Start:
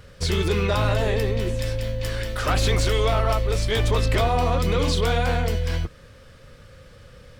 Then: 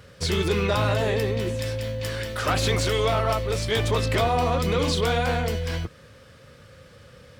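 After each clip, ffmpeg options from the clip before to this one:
ffmpeg -i in.wav -af "highpass=85" out.wav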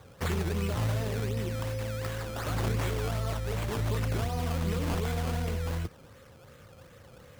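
ffmpeg -i in.wav -filter_complex "[0:a]acrossover=split=250|4100[link_01][link_02][link_03];[link_02]acompressor=threshold=-33dB:ratio=6[link_04];[link_01][link_04][link_03]amix=inputs=3:normalize=0,acrusher=samples=16:mix=1:aa=0.000001:lfo=1:lforange=16:lforate=2.7,volume=-3.5dB" out.wav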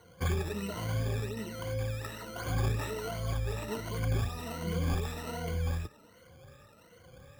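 ffmpeg -i in.wav -af "afftfilt=real='re*pow(10,18/40*sin(2*PI*(1.9*log(max(b,1)*sr/1024/100)/log(2)-(1.3)*(pts-256)/sr)))':imag='im*pow(10,18/40*sin(2*PI*(1.9*log(max(b,1)*sr/1024/100)/log(2)-(1.3)*(pts-256)/sr)))':win_size=1024:overlap=0.75,volume=-6.5dB" out.wav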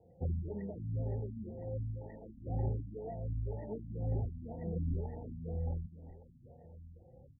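ffmpeg -i in.wav -filter_complex "[0:a]asuperstop=centerf=1300:order=20:qfactor=1.3,asplit=2[link_01][link_02];[link_02]adelay=1166,volume=-17dB,highshelf=frequency=4000:gain=-26.2[link_03];[link_01][link_03]amix=inputs=2:normalize=0,afftfilt=real='re*lt(b*sr/1024,270*pow(2000/270,0.5+0.5*sin(2*PI*2*pts/sr)))':imag='im*lt(b*sr/1024,270*pow(2000/270,0.5+0.5*sin(2*PI*2*pts/sr)))':win_size=1024:overlap=0.75,volume=-4dB" out.wav

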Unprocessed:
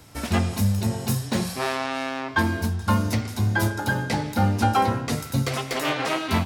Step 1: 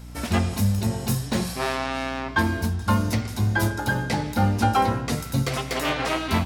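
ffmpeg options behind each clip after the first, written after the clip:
ffmpeg -i in.wav -af "aeval=exprs='val(0)+0.0126*(sin(2*PI*60*n/s)+sin(2*PI*2*60*n/s)/2+sin(2*PI*3*60*n/s)/3+sin(2*PI*4*60*n/s)/4+sin(2*PI*5*60*n/s)/5)':channel_layout=same" out.wav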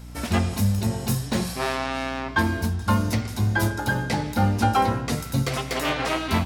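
ffmpeg -i in.wav -af anull out.wav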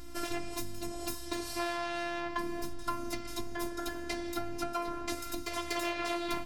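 ffmpeg -i in.wav -af "acompressor=threshold=-27dB:ratio=6,afftfilt=real='hypot(re,im)*cos(PI*b)':imag='0':win_size=512:overlap=0.75" out.wav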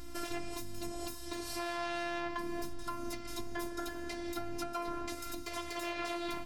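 ffmpeg -i in.wav -af "alimiter=limit=-22.5dB:level=0:latency=1:release=222" out.wav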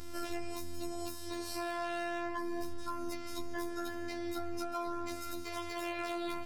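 ffmpeg -i in.wav -filter_complex "[0:a]afftfilt=real='hypot(re,im)*cos(PI*b)':imag='0':win_size=2048:overlap=0.75,asplit=2[link_01][link_02];[link_02]aeval=exprs='0.0211*(abs(mod(val(0)/0.0211+3,4)-2)-1)':channel_layout=same,volume=-9.5dB[link_03];[link_01][link_03]amix=inputs=2:normalize=0" out.wav

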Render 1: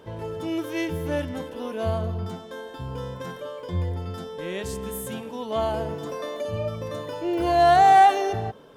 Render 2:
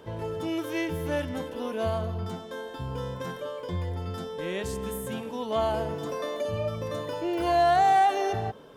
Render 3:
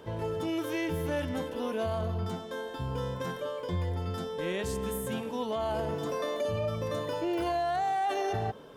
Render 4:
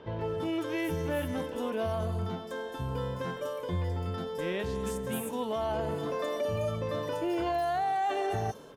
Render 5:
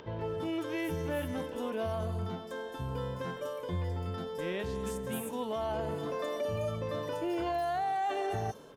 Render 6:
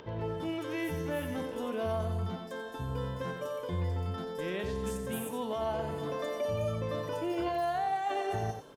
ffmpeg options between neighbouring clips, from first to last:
ffmpeg -i in.wav -filter_complex "[0:a]acrossover=split=600|2500[link_01][link_02][link_03];[link_01]acompressor=threshold=-29dB:ratio=4[link_04];[link_02]acompressor=threshold=-22dB:ratio=4[link_05];[link_03]acompressor=threshold=-40dB:ratio=4[link_06];[link_04][link_05][link_06]amix=inputs=3:normalize=0" out.wav
ffmpeg -i in.wav -af "alimiter=limit=-23.5dB:level=0:latency=1:release=13" out.wav
ffmpeg -i in.wav -filter_complex "[0:a]acrossover=split=5000[link_01][link_02];[link_02]adelay=210[link_03];[link_01][link_03]amix=inputs=2:normalize=0" out.wav
ffmpeg -i in.wav -af "acompressor=mode=upward:threshold=-45dB:ratio=2.5,volume=-2.5dB" out.wav
ffmpeg -i in.wav -af "aecho=1:1:90:0.376" out.wav

